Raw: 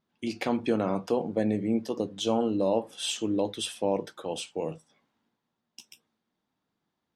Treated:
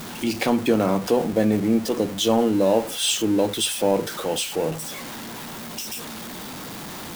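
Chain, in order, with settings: zero-crossing step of -35.5 dBFS; high shelf 8400 Hz +7 dB; gain +6 dB

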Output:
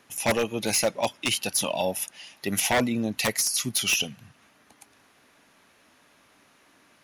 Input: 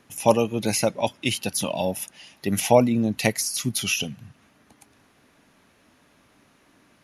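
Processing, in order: low shelf 360 Hz -10 dB; wavefolder -17.5 dBFS; gain +2 dB

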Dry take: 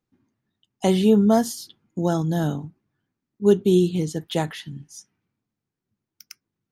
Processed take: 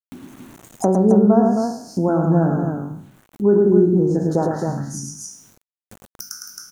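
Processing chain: spectral trails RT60 0.43 s; compressor 2:1, threshold -26 dBFS, peak gain reduction 9 dB; elliptic band-stop 1500–5000 Hz, stop band 40 dB; bell 68 Hz -11 dB 1.3 oct; treble ducked by the level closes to 1500 Hz, closed at -24 dBFS; loudspeakers at several distances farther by 37 m -4 dB, 92 m -5 dB; bit-crush 12-bit; upward compressor, threshold -32 dBFS; bell 5000 Hz -9 dB 0.32 oct; gain +9 dB

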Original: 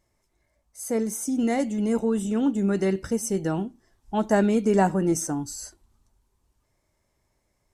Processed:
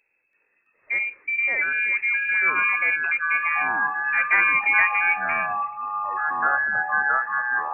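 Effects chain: inverted band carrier 2600 Hz; echoes that change speed 0.332 s, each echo -6 st, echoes 3

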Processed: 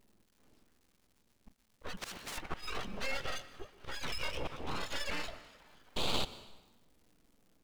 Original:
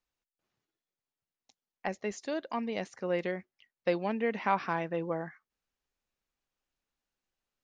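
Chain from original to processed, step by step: spectrum mirrored in octaves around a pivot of 760 Hz; 3.17–5.01 bell 1200 Hz -14 dB 0.51 oct; in parallel at +0.5 dB: limiter -29.5 dBFS, peak gain reduction 11.5 dB; on the sum: auto swell 0.419 s; compressor 3:1, threshold -48 dBFS, peak gain reduction 17 dB; crackle 370/s -69 dBFS; frequency-shifting echo 0.263 s, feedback 64%, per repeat -82 Hz, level -22 dB; 5.96–6.25 painted sound noise 1000–2500 Hz -41 dBFS; full-wave rectifier; on a send at -15.5 dB: reverb RT60 1.1 s, pre-delay 0.108 s; 1.97–2.38 on the sum: spectral compressor 4:1; gain +11 dB

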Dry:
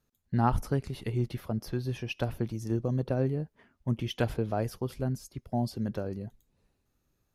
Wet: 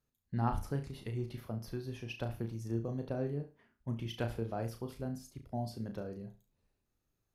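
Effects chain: flutter echo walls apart 6 m, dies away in 0.3 s; gain -8 dB

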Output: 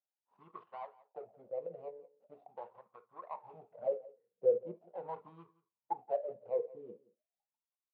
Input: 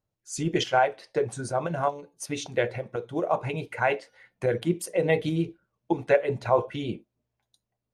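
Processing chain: median filter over 41 samples; 3.51–6 low shelf 450 Hz +6.5 dB; wah 0.41 Hz 460–1100 Hz, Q 12; speaker cabinet 110–4300 Hz, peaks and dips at 200 Hz +4 dB, 310 Hz -8 dB, 1600 Hz -6 dB; echo 0.173 s -20.5 dB; gain +1 dB

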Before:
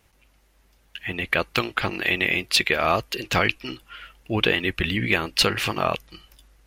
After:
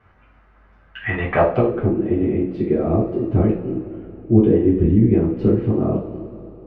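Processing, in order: two-slope reverb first 0.39 s, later 3.2 s, from -18 dB, DRR -7 dB; low-pass sweep 1400 Hz -> 340 Hz, 1.13–1.92

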